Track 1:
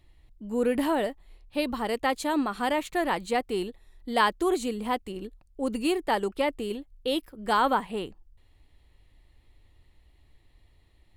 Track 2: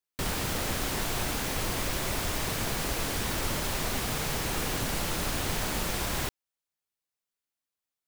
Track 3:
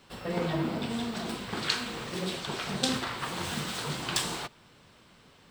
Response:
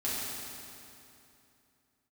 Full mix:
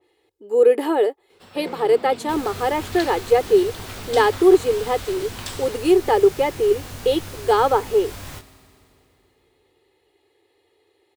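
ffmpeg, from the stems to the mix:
-filter_complex "[0:a]highpass=frequency=410:width_type=q:width=3.8,aecho=1:1:2.4:0.57,adynamicequalizer=threshold=0.0158:dfrequency=2200:dqfactor=0.7:tfrequency=2200:tqfactor=0.7:attack=5:release=100:ratio=0.375:range=2:mode=cutabove:tftype=highshelf,volume=1.5dB[link_01];[1:a]flanger=delay=18.5:depth=3:speed=0.54,adelay=2100,volume=-4.5dB,asplit=2[link_02][link_03];[link_03]volume=-16dB[link_04];[2:a]lowshelf=frequency=160:gain=-11,adelay=1300,volume=-5.5dB,asplit=2[link_05][link_06];[link_06]volume=-14.5dB[link_07];[3:a]atrim=start_sample=2205[link_08];[link_04][link_07]amix=inputs=2:normalize=0[link_09];[link_09][link_08]afir=irnorm=-1:irlink=0[link_10];[link_01][link_02][link_05][link_10]amix=inputs=4:normalize=0,equalizer=frequency=93:width_type=o:width=0.36:gain=10.5"

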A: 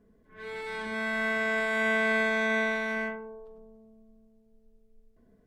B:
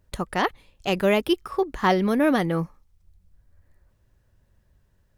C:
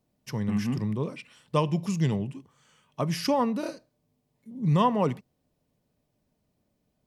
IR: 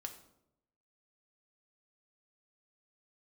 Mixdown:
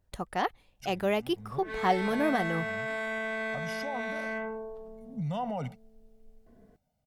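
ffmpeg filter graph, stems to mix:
-filter_complex "[0:a]acompressor=threshold=-31dB:ratio=6,adelay=1300,volume=-1dB[link_01];[1:a]volume=-8.5dB,asplit=2[link_02][link_03];[2:a]aecho=1:1:1.4:0.85,adelay=550,volume=-12dB[link_04];[link_03]apad=whole_len=335808[link_05];[link_04][link_05]sidechaincompress=threshold=-45dB:ratio=12:attack=37:release=231[link_06];[link_01][link_06]amix=inputs=2:normalize=0,dynaudnorm=framelen=570:gausssize=3:maxgain=5dB,alimiter=level_in=4dB:limit=-24dB:level=0:latency=1:release=54,volume=-4dB,volume=0dB[link_07];[link_02][link_07]amix=inputs=2:normalize=0,equalizer=frequency=740:width_type=o:width=0.29:gain=7.5"

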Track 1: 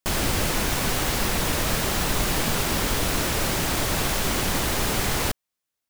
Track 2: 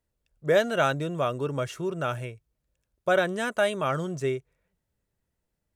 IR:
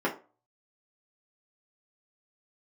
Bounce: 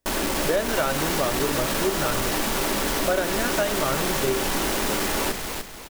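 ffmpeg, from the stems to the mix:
-filter_complex "[0:a]asoftclip=type=tanh:threshold=-23dB,equalizer=frequency=91:width=1.4:gain=-11,volume=1.5dB,asplit=3[link_01][link_02][link_03];[link_02]volume=-14.5dB[link_04];[link_03]volume=-4.5dB[link_05];[1:a]volume=1dB,asplit=2[link_06][link_07];[link_07]volume=-20dB[link_08];[2:a]atrim=start_sample=2205[link_09];[link_04][link_08]amix=inputs=2:normalize=0[link_10];[link_10][link_09]afir=irnorm=-1:irlink=0[link_11];[link_05]aecho=0:1:298|596|894|1192|1490:1|0.36|0.13|0.0467|0.0168[link_12];[link_01][link_06][link_11][link_12]amix=inputs=4:normalize=0,acompressor=threshold=-19dB:ratio=6"

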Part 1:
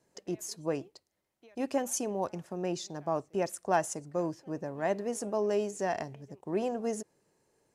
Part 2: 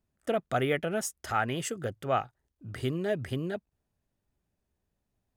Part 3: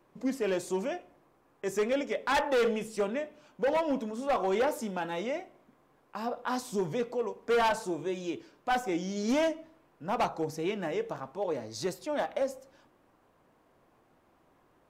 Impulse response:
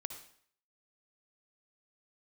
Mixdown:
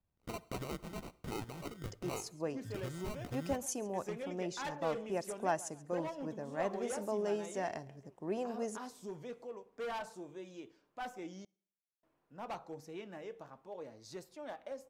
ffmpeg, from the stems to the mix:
-filter_complex "[0:a]adelay=1750,volume=-6dB,asplit=2[link_01][link_02];[link_02]volume=-21.5dB[link_03];[1:a]equalizer=frequency=250:width_type=o:width=1:gain=-7,equalizer=frequency=500:width_type=o:width=1:gain=-11,equalizer=frequency=2000:width_type=o:width=1:gain=12,equalizer=frequency=4000:width_type=o:width=1:gain=-9,equalizer=frequency=8000:width_type=o:width=1:gain=-8,acompressor=threshold=-36dB:ratio=5,acrusher=samples=26:mix=1:aa=0.000001,volume=-5dB,asplit=2[link_04][link_05];[link_05]volume=-10dB[link_06];[2:a]adelay=2300,volume=-14.5dB,asplit=3[link_07][link_08][link_09];[link_07]atrim=end=11.45,asetpts=PTS-STARTPTS,afade=type=out:start_time=11.446:duration=0.004:curve=hsin[link_10];[link_08]atrim=start=11.45:end=12.03,asetpts=PTS-STARTPTS,volume=0[link_11];[link_09]atrim=start=12.03,asetpts=PTS-STARTPTS,afade=type=in:duration=0.004:curve=hsin[link_12];[link_10][link_11][link_12]concat=n=3:v=0:a=1,asplit=2[link_13][link_14];[link_14]volume=-22dB[link_15];[3:a]atrim=start_sample=2205[link_16];[link_06][link_15]amix=inputs=2:normalize=0[link_17];[link_17][link_16]afir=irnorm=-1:irlink=0[link_18];[link_03]aecho=0:1:136|272|408|544|680:1|0.32|0.102|0.0328|0.0105[link_19];[link_01][link_04][link_13][link_18][link_19]amix=inputs=5:normalize=0"

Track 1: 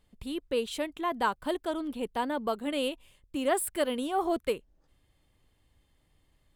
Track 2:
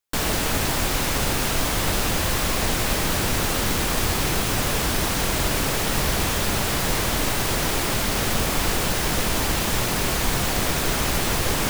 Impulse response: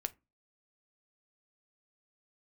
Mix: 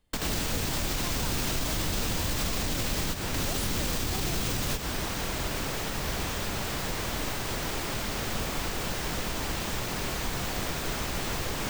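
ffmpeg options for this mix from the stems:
-filter_complex "[0:a]volume=-3dB,asplit=2[link_01][link_02];[1:a]equalizer=frequency=11000:width_type=o:width=0.44:gain=-7.5,volume=1.5dB[link_03];[link_02]apad=whole_len=515765[link_04];[link_03][link_04]sidechaingate=range=-10dB:threshold=-58dB:ratio=16:detection=peak[link_05];[link_01][link_05]amix=inputs=2:normalize=0,acrossover=split=310|3000[link_06][link_07][link_08];[link_07]acompressor=threshold=-29dB:ratio=6[link_09];[link_06][link_09][link_08]amix=inputs=3:normalize=0,alimiter=limit=-19.5dB:level=0:latency=1:release=106"

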